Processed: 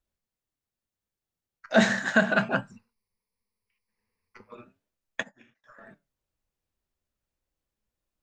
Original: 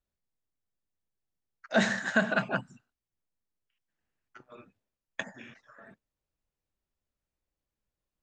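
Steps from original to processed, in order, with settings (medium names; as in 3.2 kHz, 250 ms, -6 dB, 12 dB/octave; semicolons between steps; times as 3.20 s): 2.71–4.54 s: rippled EQ curve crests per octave 0.88, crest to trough 15 dB; in parallel at -11.5 dB: hysteresis with a dead band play -39.5 dBFS; on the sum: flange 0.37 Hz, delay 2.8 ms, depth 9.5 ms, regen +83%; on a send at -13 dB: distance through air 350 m + reverberation RT60 0.25 s, pre-delay 5 ms; 5.21–5.64 s: on the sum: upward expansion 2.5:1, over -58 dBFS; trim +6.5 dB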